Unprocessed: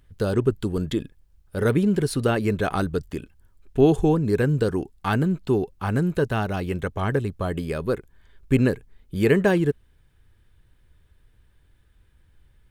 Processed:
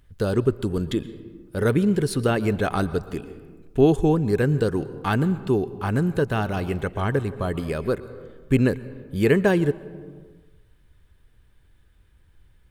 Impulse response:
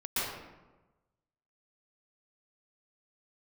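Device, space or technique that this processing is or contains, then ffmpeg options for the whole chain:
ducked reverb: -filter_complex "[0:a]asplit=3[s0][s1][s2];[1:a]atrim=start_sample=2205[s3];[s1][s3]afir=irnorm=-1:irlink=0[s4];[s2]apad=whole_len=560389[s5];[s4][s5]sidechaincompress=threshold=0.0562:ratio=8:attack=8.2:release=656,volume=0.158[s6];[s0][s6]amix=inputs=2:normalize=0"

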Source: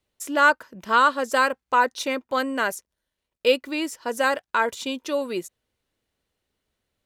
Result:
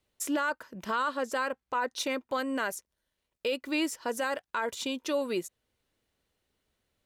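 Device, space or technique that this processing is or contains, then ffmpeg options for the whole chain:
stacked limiters: -filter_complex "[0:a]asettb=1/sr,asplit=3[s0][s1][s2];[s0]atrim=end=1.174[s3];[s1]atrim=start=1.17:end=1.92,asetpts=PTS-STARTPTS,afade=t=in:d=0.004:c=qsin,afade=t=out:st=0.746:d=0.004:c=qsin,highshelf=f=5400:g=-6[s4];[s2]atrim=start=1.916[s5];[s3][s4]acrossfade=d=0.004:c1=hsin:c2=qsin[s6];[s6][s5]acrossfade=d=0.004:c1=qsin:c2=hsin,alimiter=limit=0.224:level=0:latency=1:release=14,alimiter=limit=0.133:level=0:latency=1:release=148,alimiter=limit=0.0891:level=0:latency=1:release=437"

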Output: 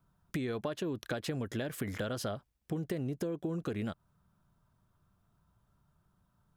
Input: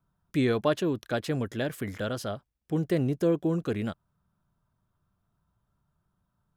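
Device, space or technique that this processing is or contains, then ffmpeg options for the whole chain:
serial compression, peaks first: -af "acompressor=threshold=0.0282:ratio=6,acompressor=threshold=0.0141:ratio=3,volume=1.5"

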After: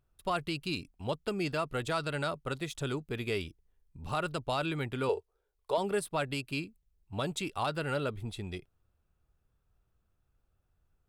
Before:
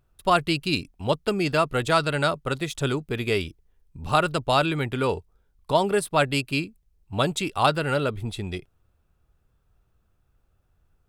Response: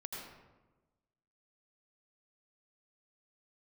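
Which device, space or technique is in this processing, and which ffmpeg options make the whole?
soft clipper into limiter: -filter_complex "[0:a]asoftclip=type=tanh:threshold=0.501,alimiter=limit=0.2:level=0:latency=1:release=98,asettb=1/sr,asplit=3[s0][s1][s2];[s0]atrim=end=5.094[s3];[s1]atrim=start=5.09:end=5.78,asetpts=PTS-STARTPTS,afade=t=in:d=0.004:c=qsin,afade=t=out:st=0.686:d=0.004:c=qsin,lowshelf=f=310:t=q:w=3:g=-10[s4];[s2]atrim=start=5.776[s5];[s3][s4]acrossfade=d=0.004:c1=hsin:c2=qsin[s6];[s6][s5]acrossfade=d=0.004:c1=qsin:c2=hsin,volume=0.398"

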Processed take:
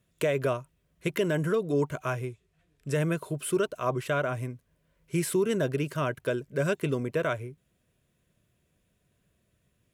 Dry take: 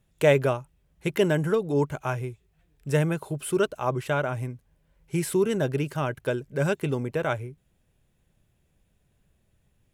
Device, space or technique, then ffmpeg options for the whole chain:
PA system with an anti-feedback notch: -filter_complex "[0:a]asettb=1/sr,asplit=3[s0][s1][s2];[s0]atrim=end=2.274[s3];[s1]atrim=start=2.27:end=2.95,asetpts=PTS-STARTPTS,afade=t=in:d=0.004:c=qsin,afade=t=out:st=0.676:d=0.004:c=qsin,lowpass=11000[s4];[s2]atrim=start=2.946[s5];[s3][s4]acrossfade=d=0.004:c1=hsin:c2=qsin[s6];[s6][s5]acrossfade=d=0.004:c1=qsin:c2=hsin,highpass=f=120:p=1,asuperstop=centerf=830:order=12:qfactor=5.7,alimiter=limit=0.141:level=0:latency=1:release=98"

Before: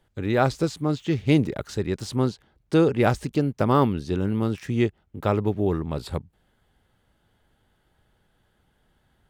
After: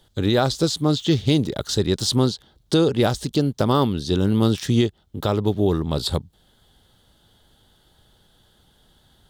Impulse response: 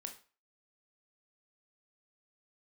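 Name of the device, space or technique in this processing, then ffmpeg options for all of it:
over-bright horn tweeter: -af "highshelf=f=2900:t=q:w=3:g=6,alimiter=limit=0.178:level=0:latency=1:release=491,volume=2.24"

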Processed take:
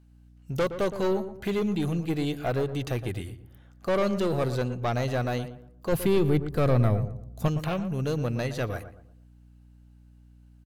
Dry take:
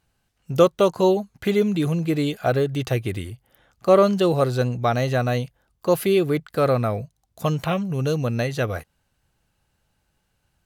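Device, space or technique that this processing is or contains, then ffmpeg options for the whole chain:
valve amplifier with mains hum: -filter_complex "[0:a]aeval=exprs='(tanh(7.08*val(0)+0.25)-tanh(0.25))/7.08':c=same,aeval=exprs='val(0)+0.00282*(sin(2*PI*60*n/s)+sin(2*PI*2*60*n/s)/2+sin(2*PI*3*60*n/s)/3+sin(2*PI*4*60*n/s)/4+sin(2*PI*5*60*n/s)/5)':c=same,asettb=1/sr,asplit=3[s0][s1][s2];[s0]atrim=end=5.924[s3];[s1]atrim=start=5.92:end=7.48,asetpts=PTS-STARTPTS,afade=t=in:d=0.004:c=qsin,afade=t=out:st=1.556:d=0.004:c=qsin,lowshelf=f=220:g=11[s4];[s2]atrim=start=7.476[s5];[s3][s4]acrossfade=d=0.004:c1=hsin:c2=qsin[s6];[s6][s5]acrossfade=d=0.004:c1=qsin:c2=hsin,asplit=2[s7][s8];[s8]adelay=117,lowpass=f=1400:p=1,volume=0.299,asplit=2[s9][s10];[s10]adelay=117,lowpass=f=1400:p=1,volume=0.36,asplit=2[s11][s12];[s12]adelay=117,lowpass=f=1400:p=1,volume=0.36,asplit=2[s13][s14];[s14]adelay=117,lowpass=f=1400:p=1,volume=0.36[s15];[s7][s9][s11][s13][s15]amix=inputs=5:normalize=0,volume=0.631"

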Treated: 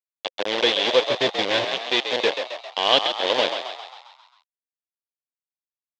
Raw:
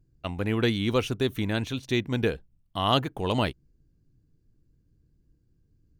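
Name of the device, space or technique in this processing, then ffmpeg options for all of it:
hand-held game console: -filter_complex "[0:a]asettb=1/sr,asplit=3[s0][s1][s2];[s0]atrim=end=1.034[s3];[s1]atrim=start=1.03:end=1.71,asetpts=PTS-STARTPTS,afade=t=in:d=0.004:c=qsin,afade=t=out:st=0.676:d=0.004:c=qsin,equalizer=f=120:w=2.5:g=10.5[s4];[s2]atrim=start=1.706[s5];[s3][s4]acrossfade=d=0.004:c1=hsin:c2=qsin[s6];[s6][s5]acrossfade=d=0.004:c1=qsin:c2=hsin,acrusher=bits=3:mix=0:aa=0.000001,highpass=480,equalizer=f=520:t=q:w=4:g=7,equalizer=f=1300:t=q:w=4:g=-9,equalizer=f=3400:t=q:w=4:g=7,lowpass=f=4600:w=0.5412,lowpass=f=4600:w=1.3066,asplit=8[s7][s8][s9][s10][s11][s12][s13][s14];[s8]adelay=134,afreqshift=67,volume=0.422[s15];[s9]adelay=268,afreqshift=134,volume=0.232[s16];[s10]adelay=402,afreqshift=201,volume=0.127[s17];[s11]adelay=536,afreqshift=268,volume=0.07[s18];[s12]adelay=670,afreqshift=335,volume=0.0385[s19];[s13]adelay=804,afreqshift=402,volume=0.0211[s20];[s14]adelay=938,afreqshift=469,volume=0.0116[s21];[s7][s15][s16][s17][s18][s19][s20][s21]amix=inputs=8:normalize=0,equalizer=f=6700:w=1.5:g=2,volume=1.58"

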